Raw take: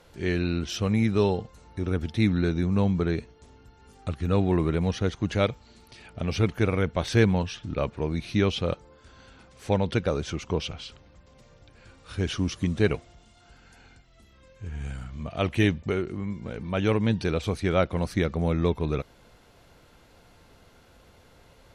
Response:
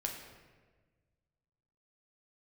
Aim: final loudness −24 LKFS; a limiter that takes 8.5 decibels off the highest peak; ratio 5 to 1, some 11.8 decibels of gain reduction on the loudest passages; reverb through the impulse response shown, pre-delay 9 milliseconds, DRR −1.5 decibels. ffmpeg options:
-filter_complex "[0:a]acompressor=threshold=-30dB:ratio=5,alimiter=level_in=4dB:limit=-24dB:level=0:latency=1,volume=-4dB,asplit=2[link_01][link_02];[1:a]atrim=start_sample=2205,adelay=9[link_03];[link_02][link_03]afir=irnorm=-1:irlink=0,volume=0.5dB[link_04];[link_01][link_04]amix=inputs=2:normalize=0,volume=10dB"

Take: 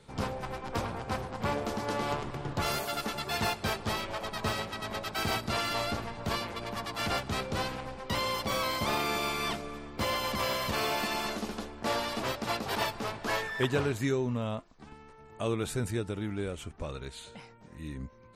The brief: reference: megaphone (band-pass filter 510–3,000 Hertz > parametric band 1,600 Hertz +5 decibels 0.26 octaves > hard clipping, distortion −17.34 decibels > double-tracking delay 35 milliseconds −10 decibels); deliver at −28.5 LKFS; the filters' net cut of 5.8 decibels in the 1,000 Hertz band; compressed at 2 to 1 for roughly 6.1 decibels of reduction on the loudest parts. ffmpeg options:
ffmpeg -i in.wav -filter_complex "[0:a]equalizer=frequency=1000:width_type=o:gain=-7.5,acompressor=threshold=-36dB:ratio=2,highpass=510,lowpass=3000,equalizer=frequency=1600:width_type=o:width=0.26:gain=5,asoftclip=type=hard:threshold=-34.5dB,asplit=2[link_01][link_02];[link_02]adelay=35,volume=-10dB[link_03];[link_01][link_03]amix=inputs=2:normalize=0,volume=13dB" out.wav

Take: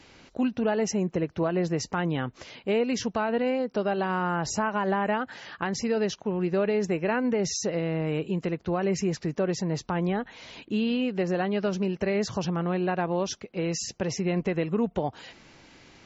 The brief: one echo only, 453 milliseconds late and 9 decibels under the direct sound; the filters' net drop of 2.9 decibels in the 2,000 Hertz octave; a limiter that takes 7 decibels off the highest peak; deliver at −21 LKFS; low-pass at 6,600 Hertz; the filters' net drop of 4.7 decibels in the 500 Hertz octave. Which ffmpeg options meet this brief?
ffmpeg -i in.wav -af "lowpass=6600,equalizer=frequency=500:width_type=o:gain=-6,equalizer=frequency=2000:width_type=o:gain=-3.5,alimiter=level_in=1dB:limit=-24dB:level=0:latency=1,volume=-1dB,aecho=1:1:453:0.355,volume=12dB" out.wav

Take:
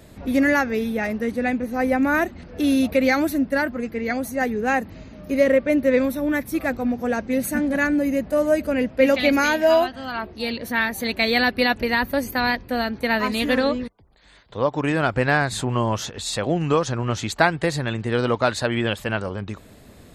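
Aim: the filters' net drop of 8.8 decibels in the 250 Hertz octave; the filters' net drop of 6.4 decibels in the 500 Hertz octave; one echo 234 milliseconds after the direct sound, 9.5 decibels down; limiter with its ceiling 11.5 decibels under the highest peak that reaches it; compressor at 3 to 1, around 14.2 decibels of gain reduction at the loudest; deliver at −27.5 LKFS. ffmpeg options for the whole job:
ffmpeg -i in.wav -af "equalizer=frequency=250:width_type=o:gain=-8.5,equalizer=frequency=500:width_type=o:gain=-6,acompressor=threshold=-34dB:ratio=3,alimiter=level_in=5dB:limit=-24dB:level=0:latency=1,volume=-5dB,aecho=1:1:234:0.335,volume=10.5dB" out.wav

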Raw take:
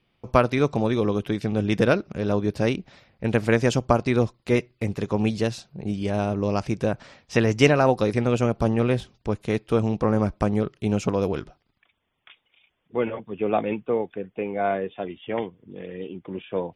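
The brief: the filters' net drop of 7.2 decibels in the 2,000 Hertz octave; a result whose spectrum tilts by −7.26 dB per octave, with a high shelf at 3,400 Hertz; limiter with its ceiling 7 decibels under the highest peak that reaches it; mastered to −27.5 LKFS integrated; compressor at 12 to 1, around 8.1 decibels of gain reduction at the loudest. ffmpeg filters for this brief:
ffmpeg -i in.wav -af "equalizer=frequency=2000:width_type=o:gain=-8.5,highshelf=frequency=3400:gain=-3.5,acompressor=threshold=-21dB:ratio=12,volume=3dB,alimiter=limit=-14.5dB:level=0:latency=1" out.wav

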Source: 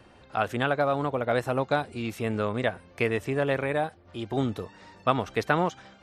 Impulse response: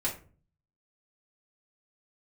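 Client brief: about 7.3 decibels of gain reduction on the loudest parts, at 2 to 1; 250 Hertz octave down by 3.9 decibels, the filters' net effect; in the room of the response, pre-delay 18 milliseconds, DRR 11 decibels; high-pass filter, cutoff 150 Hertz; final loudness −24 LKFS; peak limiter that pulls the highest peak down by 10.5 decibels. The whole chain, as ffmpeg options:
-filter_complex "[0:a]highpass=150,equalizer=frequency=250:width_type=o:gain=-4,acompressor=threshold=-31dB:ratio=2,alimiter=limit=-24dB:level=0:latency=1,asplit=2[link_01][link_02];[1:a]atrim=start_sample=2205,adelay=18[link_03];[link_02][link_03]afir=irnorm=-1:irlink=0,volume=-16.5dB[link_04];[link_01][link_04]amix=inputs=2:normalize=0,volume=13dB"

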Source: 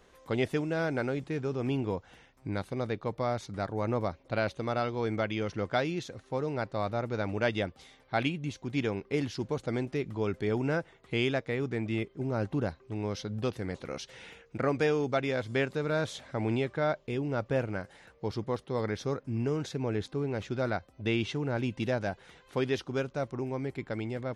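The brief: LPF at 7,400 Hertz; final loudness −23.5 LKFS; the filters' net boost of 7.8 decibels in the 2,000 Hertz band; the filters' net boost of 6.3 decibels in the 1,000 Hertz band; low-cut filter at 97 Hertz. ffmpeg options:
ffmpeg -i in.wav -af "highpass=97,lowpass=7400,equalizer=frequency=1000:width_type=o:gain=6.5,equalizer=frequency=2000:width_type=o:gain=8,volume=6.5dB" out.wav

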